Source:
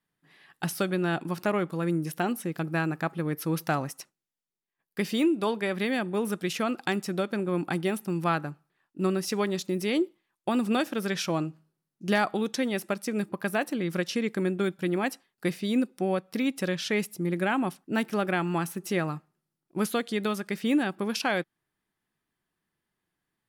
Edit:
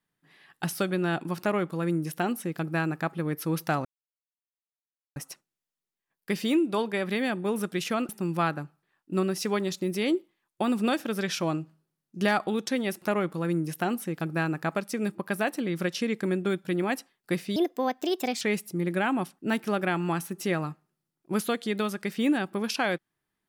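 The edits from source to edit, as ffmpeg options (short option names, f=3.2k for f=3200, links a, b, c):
-filter_complex "[0:a]asplit=7[a][b][c][d][e][f][g];[a]atrim=end=3.85,asetpts=PTS-STARTPTS,afade=t=out:st=3.846:d=0.004:c=hsin,apad=pad_dur=1.31[h];[b]atrim=start=3.85:end=6.782,asetpts=PTS-STARTPTS,afade=t=in:d=0.004:c=hsin[i];[c]atrim=start=7.958:end=12.892[j];[d]atrim=start=1.398:end=3.132[k];[e]atrim=start=12.888:end=15.704[l];[f]atrim=start=15.7:end=16.87,asetpts=PTS-STARTPTS,asetrate=60417,aresample=44100,atrim=end_sample=37662,asetpts=PTS-STARTPTS[m];[g]atrim=start=16.866[n];[h][i]concat=n=2:v=0:a=1[o];[o][j]acrossfade=d=0.004:c1=hsin:c2=hsin[p];[p][k]acrossfade=d=0.004:c1=hsin:c2=hsin[q];[q][l]acrossfade=d=0.004:c1=hsin:c2=hsin[r];[r][m]acrossfade=d=0.004:c1=hsin:c2=hsin[s];[s][n]acrossfade=d=0.004:c1=hsin:c2=hsin"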